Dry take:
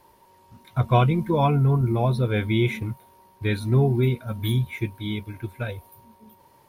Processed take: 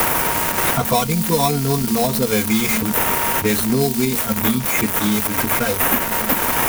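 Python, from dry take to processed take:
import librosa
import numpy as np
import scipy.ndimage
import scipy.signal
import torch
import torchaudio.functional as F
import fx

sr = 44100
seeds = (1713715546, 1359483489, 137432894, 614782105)

p1 = x + 0.5 * 10.0 ** (-18.5 / 20.0) * np.diff(np.sign(x), prepend=np.sign(x[:1]))
p2 = p1 + 0.88 * np.pad(p1, (int(4.3 * sr / 1000.0), 0))[:len(p1)]
p3 = fx.sample_hold(p2, sr, seeds[0], rate_hz=4600.0, jitter_pct=0)
p4 = p2 + (p3 * 10.0 ** (-3.0 / 20.0))
p5 = fx.high_shelf(p4, sr, hz=7200.0, db=6.0)
p6 = fx.band_squash(p5, sr, depth_pct=100)
y = p6 * 10.0 ** (-1.0 / 20.0)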